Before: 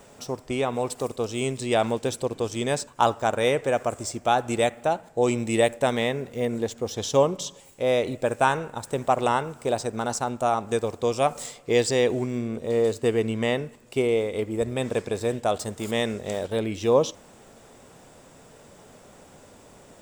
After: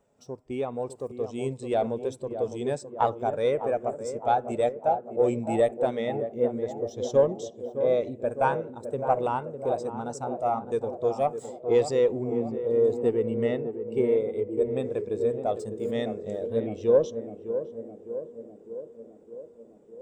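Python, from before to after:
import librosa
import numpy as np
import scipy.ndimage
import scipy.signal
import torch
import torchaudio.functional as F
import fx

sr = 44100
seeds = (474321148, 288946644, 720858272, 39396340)

y = fx.diode_clip(x, sr, knee_db=-12.5)
y = fx.echo_tape(y, sr, ms=608, feedback_pct=85, wet_db=-5, lp_hz=1100.0, drive_db=10.0, wow_cents=36)
y = fx.spectral_expand(y, sr, expansion=1.5)
y = F.gain(torch.from_numpy(y), -3.0).numpy()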